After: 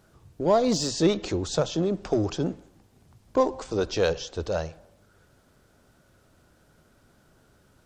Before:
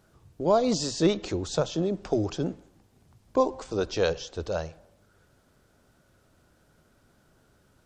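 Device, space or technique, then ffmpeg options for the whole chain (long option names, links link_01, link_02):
parallel distortion: -filter_complex "[0:a]asplit=2[link_01][link_02];[link_02]asoftclip=type=hard:threshold=-26.5dB,volume=-9dB[link_03];[link_01][link_03]amix=inputs=2:normalize=0"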